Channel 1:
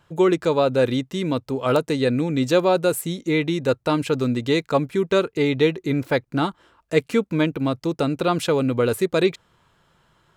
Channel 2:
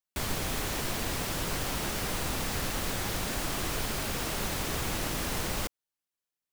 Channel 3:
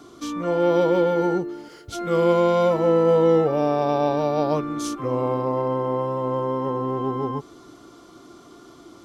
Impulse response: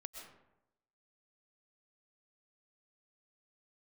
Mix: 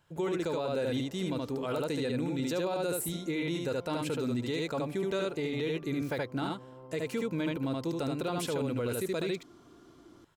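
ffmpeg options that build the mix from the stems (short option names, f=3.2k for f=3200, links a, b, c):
-filter_complex "[0:a]highshelf=f=6.5k:g=6.5,bandreject=f=1.2k:w=15,volume=-10dB,asplit=2[a][b];[b]volume=-3.5dB[c];[1:a]alimiter=level_in=5dB:limit=-24dB:level=0:latency=1,volume=-5dB,bandpass=f=490:t=q:w=2:csg=0,volume=-4.5dB[d];[2:a]alimiter=level_in=1.5dB:limit=-24dB:level=0:latency=1,volume=-1.5dB,adelay=1200,volume=-13.5dB[e];[d][e]amix=inputs=2:normalize=0,lowshelf=f=320:g=9,acompressor=threshold=-49dB:ratio=3,volume=0dB[f];[c]aecho=0:1:74:1[g];[a][f][g]amix=inputs=3:normalize=0,alimiter=level_in=0.5dB:limit=-24dB:level=0:latency=1:release=16,volume=-0.5dB"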